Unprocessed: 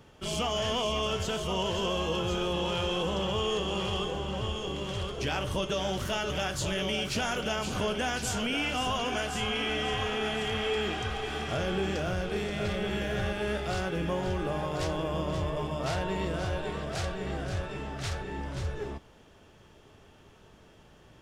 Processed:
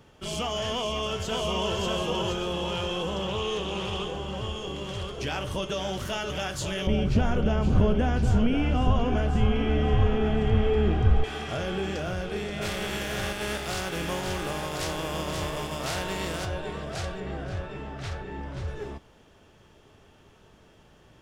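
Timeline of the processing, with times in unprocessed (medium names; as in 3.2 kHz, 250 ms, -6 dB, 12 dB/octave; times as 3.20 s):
0.72–1.73 s: echo throw 590 ms, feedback 30%, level -2 dB
3.28–4.19 s: loudspeaker Doppler distortion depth 0.15 ms
6.87–11.24 s: tilt EQ -4.5 dB/octave
12.61–16.44 s: spectral contrast reduction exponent 0.63
17.20–18.68 s: treble shelf 5 kHz -11 dB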